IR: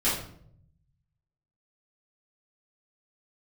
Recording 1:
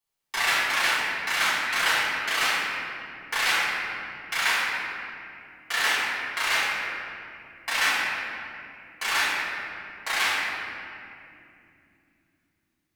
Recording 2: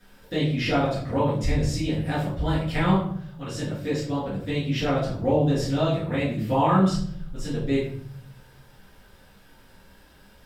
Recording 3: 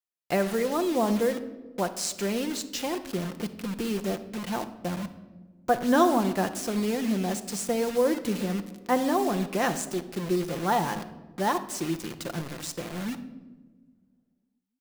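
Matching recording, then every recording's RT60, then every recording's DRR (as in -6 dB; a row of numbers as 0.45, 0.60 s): 2; 2.8 s, 0.65 s, not exponential; -11.5, -11.5, 7.5 dB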